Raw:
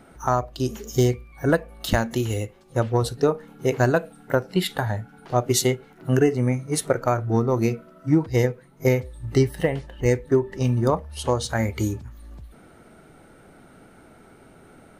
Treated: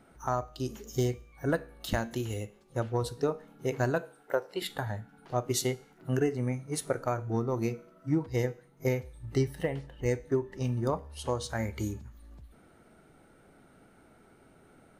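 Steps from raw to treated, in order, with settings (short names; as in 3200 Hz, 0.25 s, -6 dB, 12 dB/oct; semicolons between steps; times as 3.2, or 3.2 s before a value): 4.01–4.62 resonant low shelf 290 Hz -13 dB, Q 1.5; resonator 69 Hz, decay 0.56 s, harmonics all, mix 40%; gain -5.5 dB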